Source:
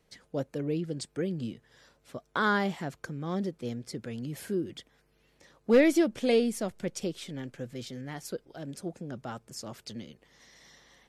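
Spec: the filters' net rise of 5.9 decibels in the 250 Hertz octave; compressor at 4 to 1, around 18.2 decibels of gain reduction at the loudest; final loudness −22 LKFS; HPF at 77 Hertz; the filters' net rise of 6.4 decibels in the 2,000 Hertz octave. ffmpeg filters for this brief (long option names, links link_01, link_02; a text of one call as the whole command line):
ffmpeg -i in.wav -af "highpass=77,equalizer=frequency=250:width_type=o:gain=7.5,equalizer=frequency=2000:width_type=o:gain=8.5,acompressor=threshold=-35dB:ratio=4,volume=17dB" out.wav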